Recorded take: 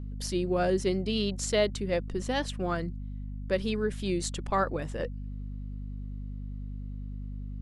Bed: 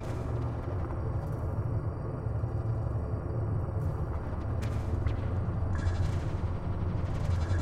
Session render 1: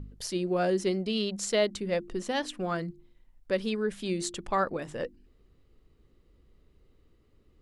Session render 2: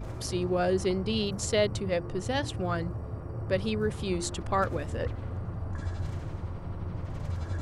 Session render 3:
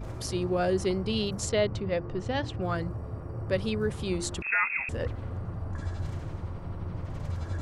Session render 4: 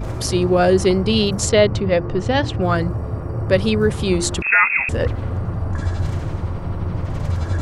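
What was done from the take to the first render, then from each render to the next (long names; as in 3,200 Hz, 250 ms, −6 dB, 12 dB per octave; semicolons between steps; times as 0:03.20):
hum removal 50 Hz, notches 7
mix in bed −4 dB
0:01.49–0:02.62: high-frequency loss of the air 120 metres; 0:04.42–0:04.89: voice inversion scrambler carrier 2,600 Hz
level +12 dB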